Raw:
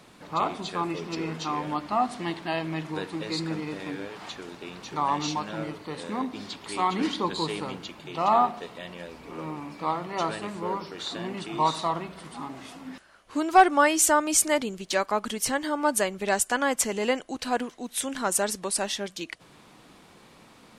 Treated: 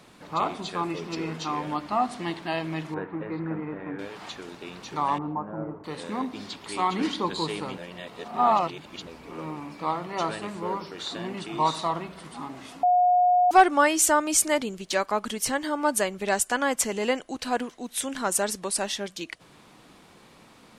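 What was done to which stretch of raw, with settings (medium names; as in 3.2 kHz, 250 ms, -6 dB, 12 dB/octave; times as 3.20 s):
2.94–3.99 s: low-pass 1.9 kHz 24 dB/octave
5.18–5.84 s: low-pass 1.2 kHz 24 dB/octave
7.78–9.07 s: reverse
12.83–13.51 s: bleep 720 Hz -16.5 dBFS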